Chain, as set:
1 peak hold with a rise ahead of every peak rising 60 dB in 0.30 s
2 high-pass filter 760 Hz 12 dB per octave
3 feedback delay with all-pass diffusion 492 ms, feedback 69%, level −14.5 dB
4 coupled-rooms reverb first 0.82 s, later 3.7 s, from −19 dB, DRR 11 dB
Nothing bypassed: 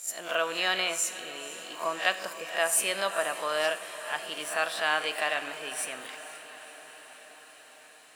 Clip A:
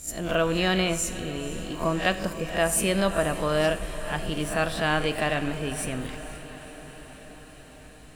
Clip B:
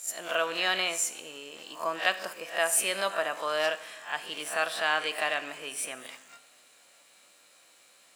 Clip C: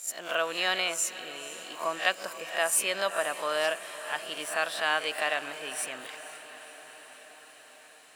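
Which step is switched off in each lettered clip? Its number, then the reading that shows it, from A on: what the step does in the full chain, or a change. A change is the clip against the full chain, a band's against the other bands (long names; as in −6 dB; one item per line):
2, 125 Hz band +25.5 dB
3, echo-to-direct ratio −8.0 dB to −11.0 dB
4, echo-to-direct ratio −8.0 dB to −11.5 dB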